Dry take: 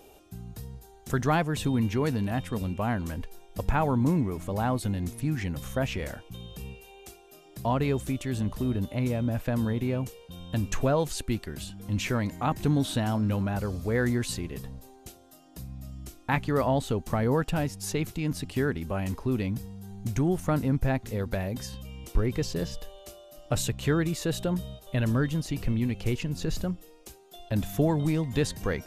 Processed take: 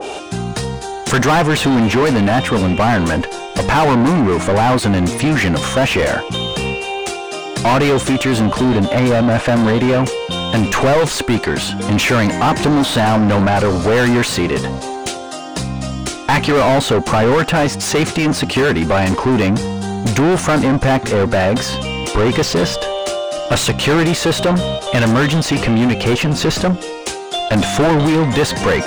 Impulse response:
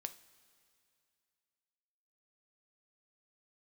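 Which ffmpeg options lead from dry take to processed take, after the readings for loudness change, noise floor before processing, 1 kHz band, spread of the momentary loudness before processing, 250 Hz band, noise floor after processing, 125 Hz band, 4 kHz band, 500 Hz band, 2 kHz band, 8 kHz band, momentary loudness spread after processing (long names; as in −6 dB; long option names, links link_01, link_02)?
+14.0 dB, −54 dBFS, +17.0 dB, 16 LU, +14.0 dB, −27 dBFS, +10.5 dB, +20.0 dB, +16.0 dB, +18.5 dB, +16.0 dB, 9 LU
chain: -filter_complex "[0:a]aresample=22050,aresample=44100,asplit=2[link_01][link_02];[link_02]highpass=frequency=720:poles=1,volume=34dB,asoftclip=type=tanh:threshold=-11.5dB[link_03];[link_01][link_03]amix=inputs=2:normalize=0,lowpass=frequency=3500:poles=1,volume=-6dB,adynamicequalizer=threshold=0.0282:dfrequency=1800:dqfactor=0.7:tfrequency=1800:tqfactor=0.7:attack=5:release=100:ratio=0.375:range=2:mode=cutabove:tftype=highshelf,volume=6dB"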